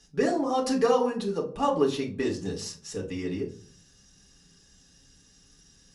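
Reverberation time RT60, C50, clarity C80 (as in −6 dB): non-exponential decay, 11.5 dB, 17.0 dB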